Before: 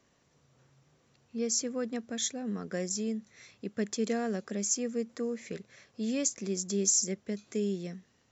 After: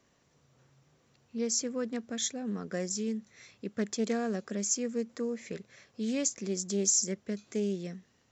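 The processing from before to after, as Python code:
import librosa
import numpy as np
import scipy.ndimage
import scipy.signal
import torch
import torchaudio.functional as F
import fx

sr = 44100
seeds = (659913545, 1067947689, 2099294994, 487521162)

y = fx.doppler_dist(x, sr, depth_ms=0.11)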